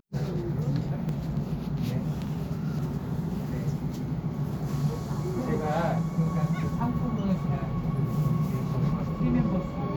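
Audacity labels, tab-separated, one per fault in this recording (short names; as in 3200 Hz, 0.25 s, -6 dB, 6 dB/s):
1.090000	1.090000	gap 2 ms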